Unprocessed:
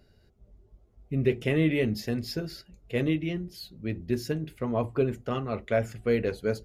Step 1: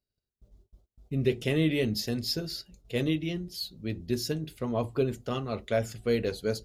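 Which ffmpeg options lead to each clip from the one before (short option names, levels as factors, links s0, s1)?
-af "agate=range=0.0355:threshold=0.00178:ratio=16:detection=peak,highshelf=f=2900:t=q:w=1.5:g=7,volume=0.841"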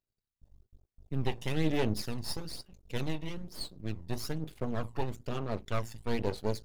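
-af "aeval=exprs='max(val(0),0)':c=same,aphaser=in_gain=1:out_gain=1:delay=1.1:decay=0.47:speed=1.1:type=sinusoidal,volume=0.708"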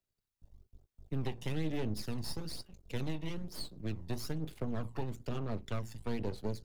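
-filter_complex "[0:a]acrossover=split=110|310[s0][s1][s2];[s0]acompressor=threshold=0.0141:ratio=4[s3];[s1]acompressor=threshold=0.0126:ratio=4[s4];[s2]acompressor=threshold=0.00708:ratio=4[s5];[s3][s4][s5]amix=inputs=3:normalize=0,volume=1.12"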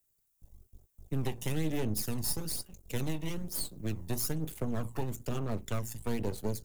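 -af "aexciter=amount=2.8:drive=7.8:freq=6300,volume=1.41"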